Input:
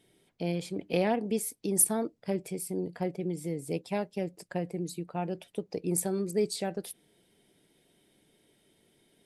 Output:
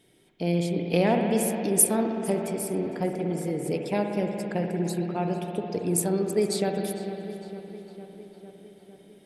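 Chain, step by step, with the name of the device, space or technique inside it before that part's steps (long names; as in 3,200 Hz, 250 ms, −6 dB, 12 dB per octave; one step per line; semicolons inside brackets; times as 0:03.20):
dub delay into a spring reverb (feedback echo with a low-pass in the loop 454 ms, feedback 68%, low-pass 4,600 Hz, level −14 dB; spring reverb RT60 3.1 s, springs 58 ms, chirp 75 ms, DRR 3 dB)
level +4 dB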